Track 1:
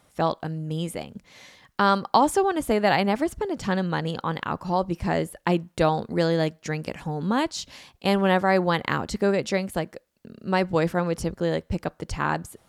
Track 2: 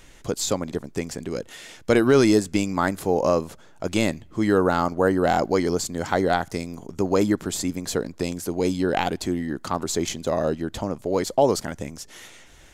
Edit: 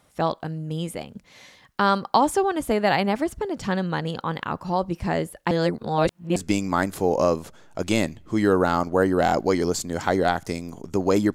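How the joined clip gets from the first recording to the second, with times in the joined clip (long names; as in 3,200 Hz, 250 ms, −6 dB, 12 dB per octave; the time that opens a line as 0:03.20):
track 1
0:05.51–0:06.36: reverse
0:06.36: continue with track 2 from 0:02.41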